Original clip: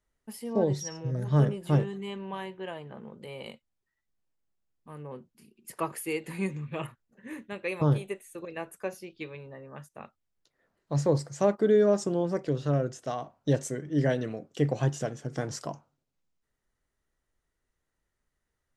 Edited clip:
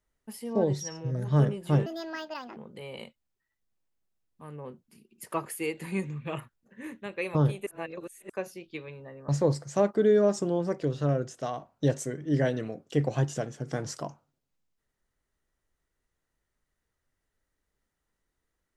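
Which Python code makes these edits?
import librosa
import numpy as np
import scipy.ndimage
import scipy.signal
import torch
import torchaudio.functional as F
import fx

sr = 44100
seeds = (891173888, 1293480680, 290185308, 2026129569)

y = fx.edit(x, sr, fx.speed_span(start_s=1.86, length_s=1.17, speed=1.66),
    fx.reverse_span(start_s=8.13, length_s=0.63),
    fx.cut(start_s=9.75, length_s=1.18), tone=tone)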